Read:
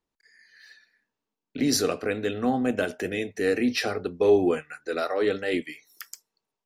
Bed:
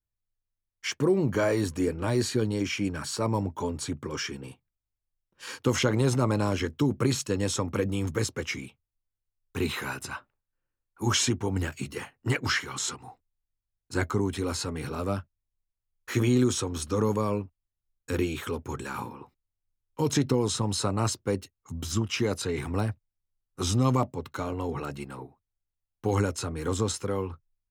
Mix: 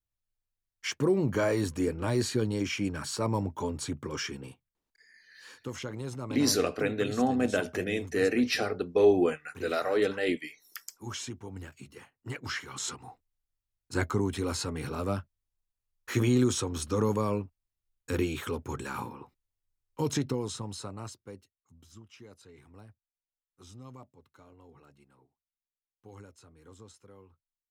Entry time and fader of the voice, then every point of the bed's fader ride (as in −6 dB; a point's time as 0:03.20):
4.75 s, −2.0 dB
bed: 0:04.43 −2 dB
0:05.04 −13.5 dB
0:12.17 −13.5 dB
0:13.03 −1.5 dB
0:19.87 −1.5 dB
0:21.89 −24 dB